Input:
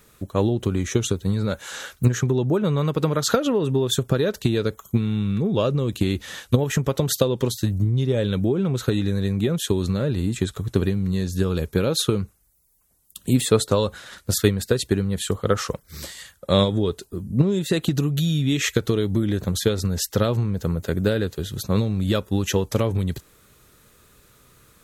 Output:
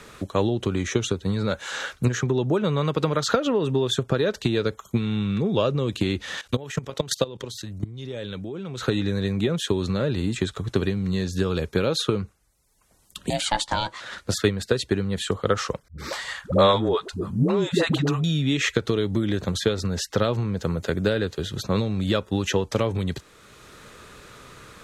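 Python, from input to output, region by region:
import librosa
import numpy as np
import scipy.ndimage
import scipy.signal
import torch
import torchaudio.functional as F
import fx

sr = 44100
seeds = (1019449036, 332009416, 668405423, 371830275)

y = fx.chain(x, sr, fx.high_shelf(hz=2100.0, db=6.0),
    fx.level_steps(step_db=18), at=(6.37, 8.82))
y = fx.chain(y, sr, fx.lowpass(hz=7700.0, slope=12),
    fx.tilt_eq(slope=3.0),
    fx.ring_mod(carrier_hz=420.0), at=(13.3, 14.01))
y = fx.chain(y, sr, fx.peak_eq(hz=1000.0, db=9.5, octaves=1.8),
    fx.dispersion(late='highs', ms=102.0, hz=360.0), at=(15.88, 18.24))
y = scipy.signal.sosfilt(scipy.signal.bessel(2, 5300.0, 'lowpass', norm='mag', fs=sr, output='sos'), y)
y = fx.low_shelf(y, sr, hz=340.0, db=-6.5)
y = fx.band_squash(y, sr, depth_pct=40)
y = y * 10.0 ** (2.0 / 20.0)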